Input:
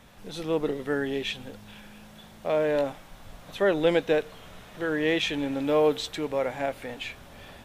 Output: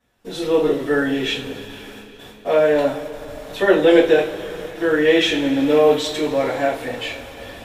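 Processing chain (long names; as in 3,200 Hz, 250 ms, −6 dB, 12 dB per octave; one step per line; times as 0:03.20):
noise gate with hold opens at −37 dBFS
coupled-rooms reverb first 0.32 s, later 4.3 s, from −22 dB, DRR −10 dB
level −1.5 dB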